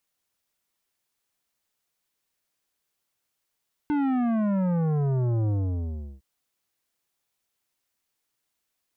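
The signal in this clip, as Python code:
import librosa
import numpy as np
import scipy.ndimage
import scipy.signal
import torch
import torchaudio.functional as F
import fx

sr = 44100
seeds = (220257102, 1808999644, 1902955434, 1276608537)

y = fx.sub_drop(sr, level_db=-23, start_hz=300.0, length_s=2.31, drive_db=12, fade_s=0.72, end_hz=65.0)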